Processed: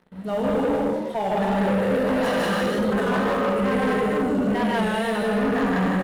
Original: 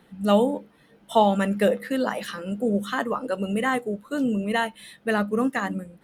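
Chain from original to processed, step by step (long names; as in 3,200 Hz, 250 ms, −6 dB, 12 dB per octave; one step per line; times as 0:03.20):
high-shelf EQ 2,400 Hz −10.5 dB
reversed playback
downward compressor 5 to 1, threshold −36 dBFS, peak gain reduction 19.5 dB
reversed playback
loudspeakers that aren't time-aligned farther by 53 metres −1 dB, 67 metres −5 dB
reverb whose tail is shaped and stops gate 380 ms flat, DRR −4.5 dB
leveller curve on the samples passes 3
wow of a warped record 33 1/3 rpm, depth 100 cents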